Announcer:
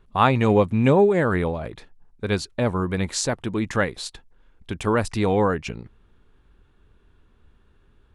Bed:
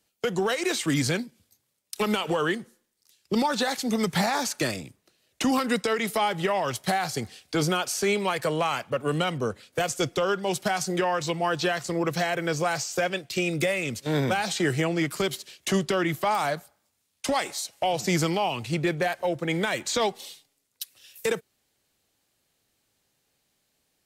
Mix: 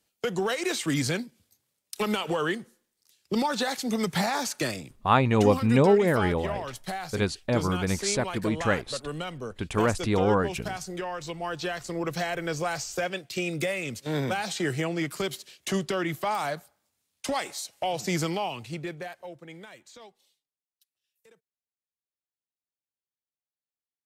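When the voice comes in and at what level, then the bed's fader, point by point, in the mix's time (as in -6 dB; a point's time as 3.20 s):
4.90 s, -3.0 dB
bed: 5.21 s -2 dB
5.49 s -8.5 dB
11.17 s -8.5 dB
12.16 s -3.5 dB
18.36 s -3.5 dB
20.70 s -32.5 dB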